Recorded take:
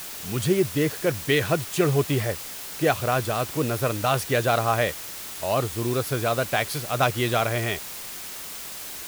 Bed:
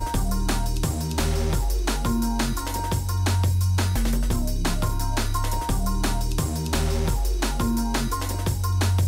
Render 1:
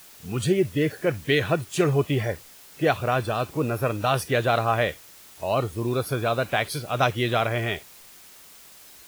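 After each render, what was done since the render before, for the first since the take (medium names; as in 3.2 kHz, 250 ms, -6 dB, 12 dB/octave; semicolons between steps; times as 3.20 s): noise print and reduce 12 dB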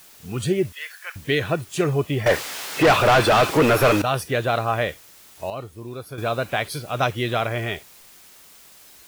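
0.72–1.16 s: high-pass 1.1 kHz 24 dB/octave; 2.26–4.02 s: overdrive pedal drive 30 dB, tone 3.1 kHz, clips at -7 dBFS; 5.50–6.18 s: gain -9 dB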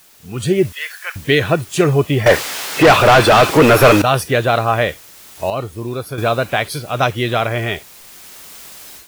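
level rider gain up to 12 dB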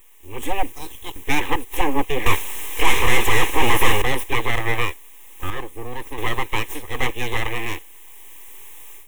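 full-wave rectifier; static phaser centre 950 Hz, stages 8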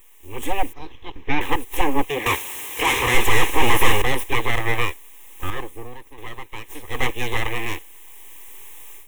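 0.73–1.41 s: distance through air 260 m; 2.08–3.14 s: high-pass 190 Hz -> 75 Hz 6 dB/octave; 5.69–6.96 s: dip -12 dB, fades 0.33 s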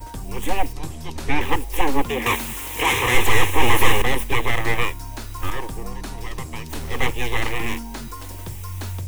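add bed -9 dB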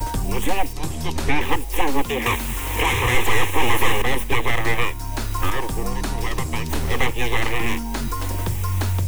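three bands compressed up and down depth 70%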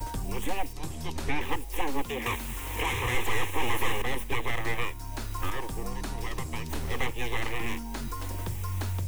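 trim -9.5 dB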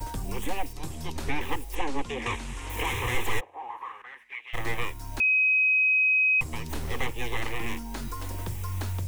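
1.75–2.70 s: low-pass 8.4 kHz 24 dB/octave; 3.39–4.53 s: band-pass filter 570 Hz -> 2.8 kHz, Q 5.5; 5.20–6.41 s: bleep 2.53 kHz -19 dBFS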